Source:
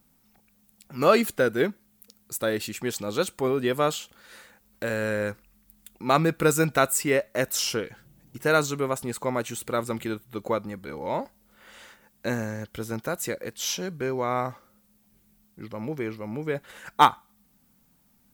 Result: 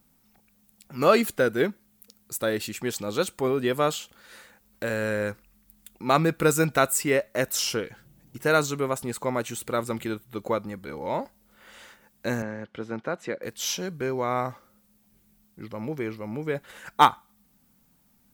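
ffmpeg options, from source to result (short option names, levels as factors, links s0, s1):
-filter_complex "[0:a]asettb=1/sr,asplit=3[s0][s1][s2];[s0]atrim=end=12.424[s3];[s1]atrim=start=12.42:end=13.43,asetpts=PTS-STARTPTS,afade=t=in:d=0.004:c=qsin,afade=t=out:st=1.006:d=0.004:c=qsin,highpass=160,lowpass=2800[s4];[s2]atrim=start=13.426[s5];[s3][s4]acrossfade=d=0.004:c1=hsin:c2=qsin[s6];[s6][s5]acrossfade=d=0.004:c1=qsin:c2=hsin"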